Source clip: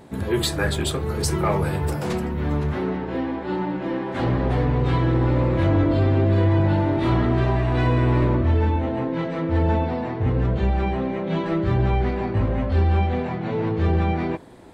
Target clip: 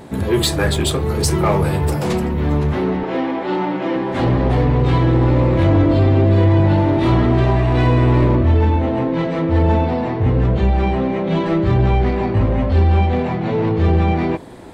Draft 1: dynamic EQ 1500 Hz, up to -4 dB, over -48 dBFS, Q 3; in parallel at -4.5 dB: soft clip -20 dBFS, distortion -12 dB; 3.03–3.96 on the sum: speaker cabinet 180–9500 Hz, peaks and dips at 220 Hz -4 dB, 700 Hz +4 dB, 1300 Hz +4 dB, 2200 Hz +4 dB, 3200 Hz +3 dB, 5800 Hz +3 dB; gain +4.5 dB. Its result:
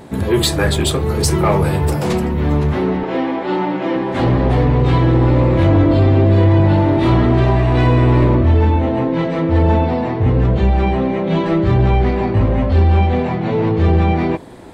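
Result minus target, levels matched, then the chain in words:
soft clip: distortion -7 dB
dynamic EQ 1500 Hz, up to -4 dB, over -48 dBFS, Q 3; in parallel at -4.5 dB: soft clip -30.5 dBFS, distortion -5 dB; 3.03–3.96 on the sum: speaker cabinet 180–9500 Hz, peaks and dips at 220 Hz -4 dB, 700 Hz +4 dB, 1300 Hz +4 dB, 2200 Hz +4 dB, 3200 Hz +3 dB, 5800 Hz +3 dB; gain +4.5 dB

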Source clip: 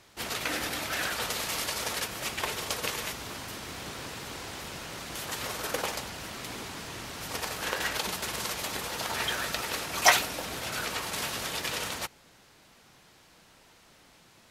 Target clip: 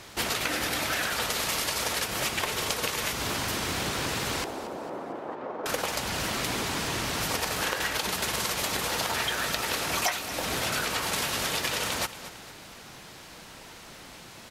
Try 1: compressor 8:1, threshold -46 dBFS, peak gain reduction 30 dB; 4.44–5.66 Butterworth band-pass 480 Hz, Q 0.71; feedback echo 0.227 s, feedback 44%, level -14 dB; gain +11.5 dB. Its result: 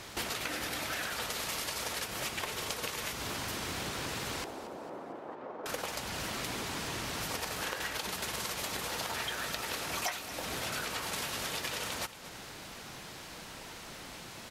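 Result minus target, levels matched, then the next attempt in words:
compressor: peak gain reduction +7.5 dB
compressor 8:1, threshold -37.5 dBFS, peak gain reduction 22.5 dB; 4.44–5.66 Butterworth band-pass 480 Hz, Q 0.71; feedback echo 0.227 s, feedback 44%, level -14 dB; gain +11.5 dB

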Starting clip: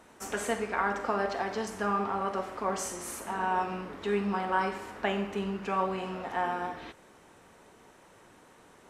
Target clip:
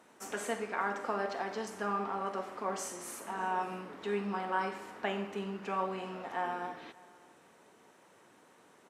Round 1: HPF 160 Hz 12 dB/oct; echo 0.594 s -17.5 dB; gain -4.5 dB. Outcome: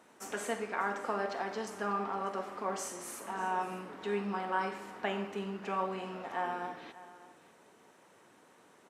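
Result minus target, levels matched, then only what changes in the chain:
echo-to-direct +6.5 dB
change: echo 0.594 s -24 dB

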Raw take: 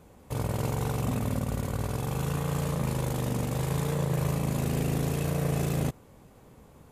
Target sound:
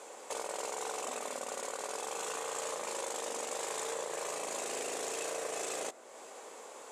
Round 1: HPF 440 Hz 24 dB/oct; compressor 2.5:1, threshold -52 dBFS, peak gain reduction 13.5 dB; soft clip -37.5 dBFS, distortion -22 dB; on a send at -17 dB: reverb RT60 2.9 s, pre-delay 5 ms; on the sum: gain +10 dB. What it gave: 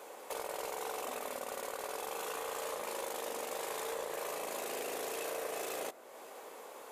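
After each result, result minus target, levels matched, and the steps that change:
soft clip: distortion +13 dB; 8000 Hz band -4.0 dB
change: soft clip -30 dBFS, distortion -35 dB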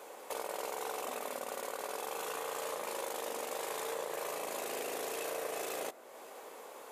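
8000 Hz band -4.5 dB
add after compressor: synth low-pass 7700 Hz, resonance Q 2.6

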